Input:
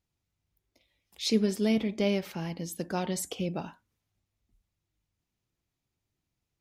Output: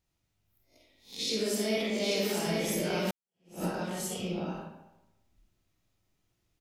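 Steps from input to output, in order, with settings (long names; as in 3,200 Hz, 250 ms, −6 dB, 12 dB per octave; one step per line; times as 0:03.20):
peak hold with a rise ahead of every peak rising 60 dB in 0.34 s
0:01.27–0:02.47: bass and treble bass −14 dB, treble +6 dB
brickwall limiter −25 dBFS, peak gain reduction 11.5 dB
single-tap delay 838 ms −3.5 dB
convolution reverb RT60 0.95 s, pre-delay 5 ms, DRR −2.5 dB
0:03.11–0:03.64: fade in exponential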